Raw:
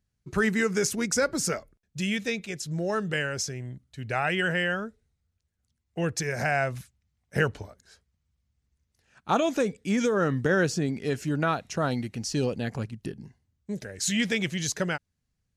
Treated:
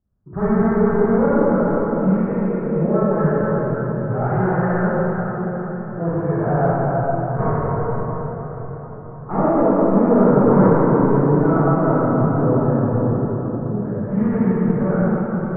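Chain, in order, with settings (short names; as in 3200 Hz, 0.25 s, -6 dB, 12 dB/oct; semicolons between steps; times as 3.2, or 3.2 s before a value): one-sided fold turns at -23 dBFS; steep low-pass 1300 Hz 36 dB/oct; reverb RT60 5.3 s, pre-delay 23 ms, DRR -12.5 dB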